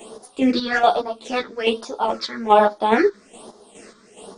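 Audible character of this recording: phasing stages 6, 1.2 Hz, lowest notch 720–2500 Hz; chopped level 2.4 Hz, depth 60%, duty 40%; a shimmering, thickened sound

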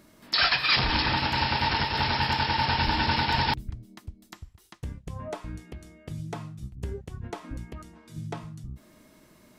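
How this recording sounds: noise floor -58 dBFS; spectral tilt -2.0 dB/octave

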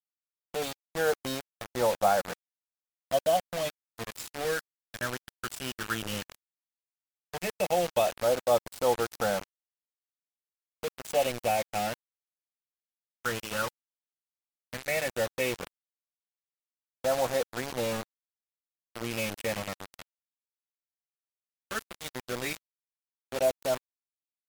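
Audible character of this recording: phasing stages 12, 0.13 Hz, lowest notch 690–2700 Hz; a quantiser's noise floor 6-bit, dither none; MP3

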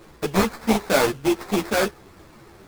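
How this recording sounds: aliases and images of a low sample rate 3 kHz, jitter 20%; a shimmering, thickened sound

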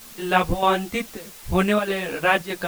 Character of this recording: chopped level 1.6 Hz, depth 60%, duty 85%; a quantiser's noise floor 8-bit, dither triangular; a shimmering, thickened sound

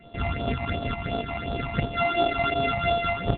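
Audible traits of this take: a buzz of ramps at a fixed pitch in blocks of 64 samples; tremolo triangle 4.6 Hz, depth 45%; phasing stages 8, 2.8 Hz, lowest notch 430–2100 Hz; G.726

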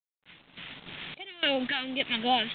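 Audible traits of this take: phasing stages 2, 2.7 Hz, lowest notch 530–1600 Hz; a quantiser's noise floor 8-bit, dither none; random-step tremolo, depth 90%; G.726

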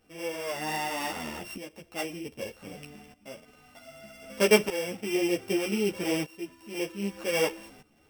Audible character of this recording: a buzz of ramps at a fixed pitch in blocks of 16 samples; tremolo saw up 0.64 Hz, depth 85%; a shimmering, thickened sound

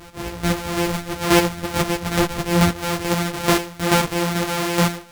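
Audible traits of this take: a buzz of ramps at a fixed pitch in blocks of 256 samples; chopped level 2.3 Hz, depth 60%, duty 20%; a shimmering, thickened sound

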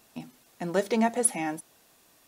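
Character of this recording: noise floor -62 dBFS; spectral tilt -3.5 dB/octave

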